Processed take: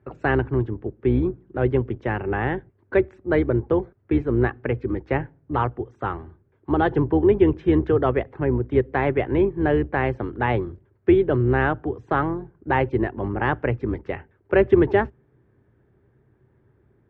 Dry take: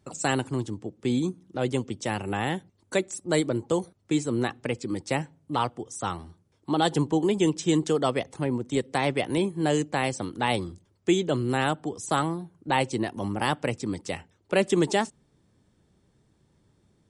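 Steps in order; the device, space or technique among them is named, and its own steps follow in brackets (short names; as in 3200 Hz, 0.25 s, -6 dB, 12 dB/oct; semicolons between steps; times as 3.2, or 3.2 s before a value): sub-octave bass pedal (octaver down 2 oct, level -4 dB; speaker cabinet 65–2200 Hz, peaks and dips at 66 Hz +6 dB, 120 Hz +8 dB, 180 Hz -6 dB, 390 Hz +8 dB, 1600 Hz +6 dB); gain +2 dB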